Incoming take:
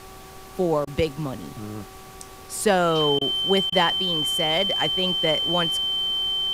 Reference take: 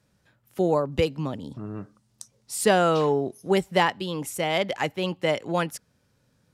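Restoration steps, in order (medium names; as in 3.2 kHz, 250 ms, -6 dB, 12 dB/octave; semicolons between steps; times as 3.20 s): de-hum 381.4 Hz, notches 3; band-stop 3.1 kHz, Q 30; interpolate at 0.85/3.19/3.70 s, 21 ms; noise print and reduce 25 dB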